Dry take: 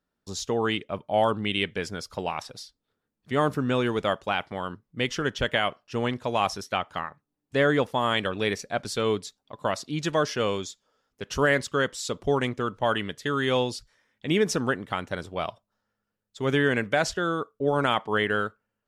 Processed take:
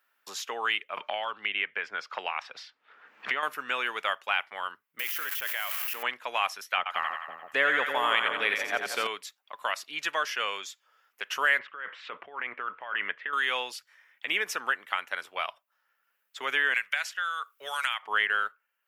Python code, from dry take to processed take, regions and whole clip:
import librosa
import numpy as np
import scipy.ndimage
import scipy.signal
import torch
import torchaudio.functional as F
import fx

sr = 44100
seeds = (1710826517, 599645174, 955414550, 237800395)

y = fx.chain(x, sr, fx.air_absorb(metres=170.0),
    fx.band_squash(depth_pct=100), at=(0.97, 3.43))
y = fx.chain(y, sr, fx.crossing_spikes(level_db=-18.5),
    fx.level_steps(step_db=17), at=(4.99, 6.03))
y = fx.chain(y, sr, fx.low_shelf(hz=500.0, db=11.0),
    fx.echo_split(split_hz=650.0, low_ms=325, high_ms=87, feedback_pct=52, wet_db=-5), at=(6.77, 9.07))
y = fx.chain(y, sr, fx.lowpass(hz=2400.0, slope=24),
    fx.over_compress(threshold_db=-33.0, ratio=-1.0), at=(11.59, 13.33))
y = fx.chain(y, sr, fx.tone_stack(knobs='10-0-10'),
    fx.band_squash(depth_pct=100), at=(16.74, 18.03))
y = scipy.signal.sosfilt(scipy.signal.butter(2, 1500.0, 'highpass', fs=sr, output='sos'), y)
y = fx.band_shelf(y, sr, hz=5800.0, db=-11.0, octaves=1.7)
y = fx.band_squash(y, sr, depth_pct=40)
y = y * 10.0 ** (5.5 / 20.0)